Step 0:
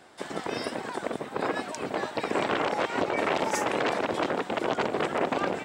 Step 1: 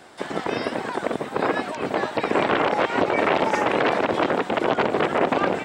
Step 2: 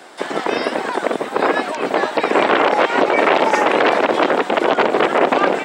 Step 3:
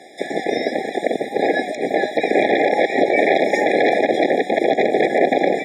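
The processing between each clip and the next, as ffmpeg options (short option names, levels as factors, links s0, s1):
-filter_complex "[0:a]acrossover=split=4000[s0][s1];[s1]acompressor=threshold=0.002:ratio=4:attack=1:release=60[s2];[s0][s2]amix=inputs=2:normalize=0,volume=2.11"
-af "apsyclip=3.76,highpass=270,volume=0.596"
-af "areverse,acompressor=mode=upward:threshold=0.0158:ratio=2.5,areverse,afftfilt=real='re*eq(mod(floor(b*sr/1024/820),2),0)':imag='im*eq(mod(floor(b*sr/1024/820),2),0)':win_size=1024:overlap=0.75"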